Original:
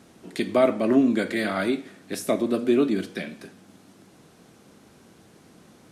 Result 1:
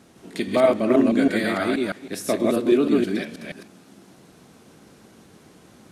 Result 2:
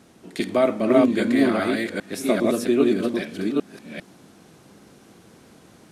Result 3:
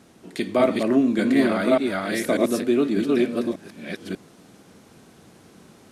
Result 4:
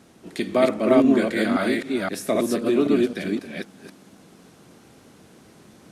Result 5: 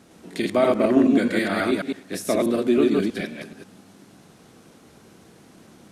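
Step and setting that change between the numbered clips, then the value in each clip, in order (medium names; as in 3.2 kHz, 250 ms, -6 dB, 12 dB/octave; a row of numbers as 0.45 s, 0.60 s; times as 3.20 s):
chunks repeated in reverse, time: 160 ms, 400 ms, 593 ms, 261 ms, 107 ms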